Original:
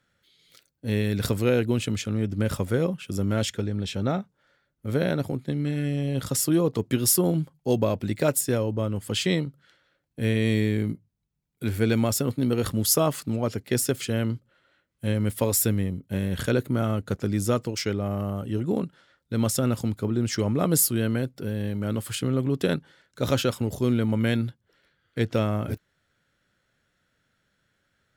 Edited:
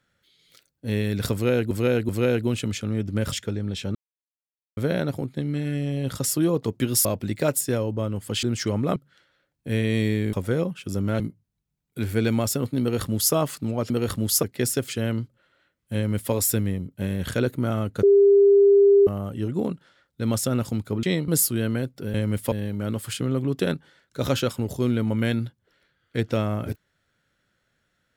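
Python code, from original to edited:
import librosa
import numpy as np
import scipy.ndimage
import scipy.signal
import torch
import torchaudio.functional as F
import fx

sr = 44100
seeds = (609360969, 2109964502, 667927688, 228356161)

y = fx.edit(x, sr, fx.repeat(start_s=1.33, length_s=0.38, count=3),
    fx.move(start_s=2.56, length_s=0.87, to_s=10.85),
    fx.silence(start_s=4.06, length_s=0.82),
    fx.cut(start_s=7.16, length_s=0.69),
    fx.swap(start_s=9.23, length_s=0.25, other_s=20.15, other_length_s=0.53),
    fx.duplicate(start_s=12.46, length_s=0.53, to_s=13.55),
    fx.duplicate(start_s=15.07, length_s=0.38, to_s=21.54),
    fx.bleep(start_s=17.15, length_s=1.04, hz=400.0, db=-11.5), tone=tone)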